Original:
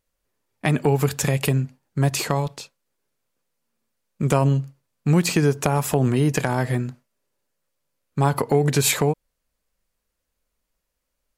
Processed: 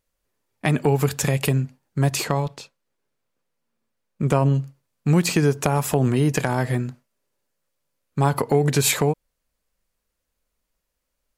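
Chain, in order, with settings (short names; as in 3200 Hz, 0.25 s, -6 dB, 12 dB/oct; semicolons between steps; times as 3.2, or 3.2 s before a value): 2.23–4.53 high shelf 6900 Hz -> 3400 Hz -7.5 dB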